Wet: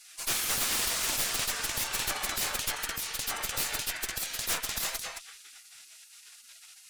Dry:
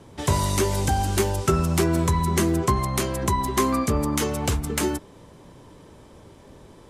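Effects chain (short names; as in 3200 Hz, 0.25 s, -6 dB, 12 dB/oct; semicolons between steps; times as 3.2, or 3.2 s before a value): darkening echo 0.216 s, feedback 16%, low-pass 2300 Hz, level -5 dB; in parallel at +1 dB: compressor, threshold -30 dBFS, peak gain reduction 14 dB; on the sum: spectral gate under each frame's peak -30 dB weak; added harmonics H 3 -12 dB, 7 -9 dB, 8 -9 dB, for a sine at -16.5 dBFS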